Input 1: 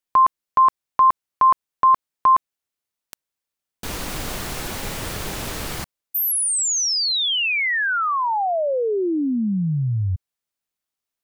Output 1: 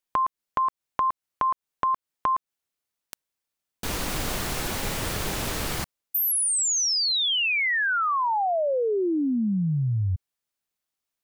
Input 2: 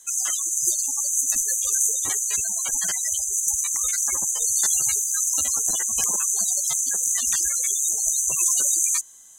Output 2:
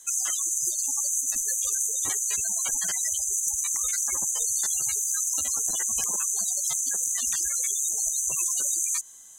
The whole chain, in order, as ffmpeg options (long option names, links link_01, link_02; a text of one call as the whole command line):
ffmpeg -i in.wav -af "acompressor=threshold=-22dB:ratio=6:attack=8.7:release=209:knee=1:detection=rms" out.wav